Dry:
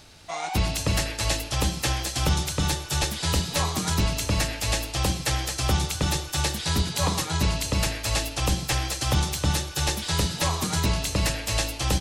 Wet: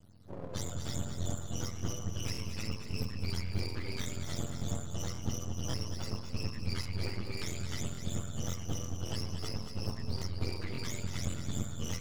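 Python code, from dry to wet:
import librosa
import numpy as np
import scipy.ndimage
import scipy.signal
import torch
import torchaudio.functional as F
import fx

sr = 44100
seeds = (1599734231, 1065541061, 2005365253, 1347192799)

p1 = fx.octave_mirror(x, sr, pivot_hz=620.0)
p2 = fx.filter_lfo_notch(p1, sr, shape='square', hz=0.24, low_hz=700.0, high_hz=2400.0, q=2.2)
p3 = np.maximum(p2, 0.0)
p4 = p3 + fx.echo_multitap(p3, sr, ms=(216, 229, 708), db=(-16.5, -9.0, -17.5), dry=0)
p5 = fx.buffer_crackle(p4, sr, first_s=0.65, period_s=0.56, block=1024, kind='repeat')
y = p5 * librosa.db_to_amplitude(-8.5)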